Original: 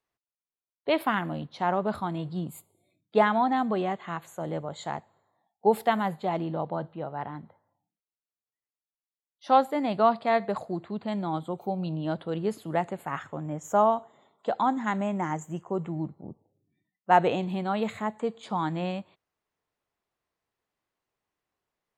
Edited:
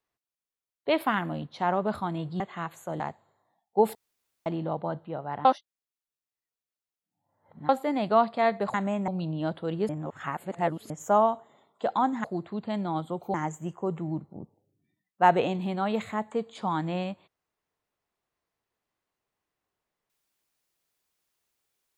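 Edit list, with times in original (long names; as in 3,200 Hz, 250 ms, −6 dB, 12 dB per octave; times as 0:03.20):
0:02.40–0:03.91: remove
0:04.51–0:04.88: remove
0:05.83–0:06.34: fill with room tone
0:07.33–0:09.57: reverse
0:10.62–0:11.72: swap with 0:14.88–0:15.22
0:12.53–0:13.54: reverse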